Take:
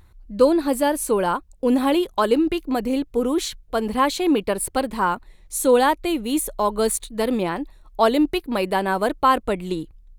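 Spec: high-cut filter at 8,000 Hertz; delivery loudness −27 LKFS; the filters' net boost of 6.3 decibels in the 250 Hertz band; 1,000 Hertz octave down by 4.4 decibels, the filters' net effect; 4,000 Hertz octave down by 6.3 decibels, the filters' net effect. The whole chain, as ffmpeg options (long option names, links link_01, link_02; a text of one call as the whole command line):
ffmpeg -i in.wav -af "lowpass=8000,equalizer=frequency=250:width_type=o:gain=8,equalizer=frequency=1000:width_type=o:gain=-5.5,equalizer=frequency=4000:width_type=o:gain=-8,volume=-8dB" out.wav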